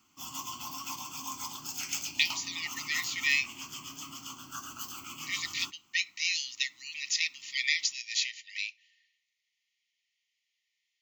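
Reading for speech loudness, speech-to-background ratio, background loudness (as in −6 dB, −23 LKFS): −31.0 LKFS, 8.0 dB, −39.0 LKFS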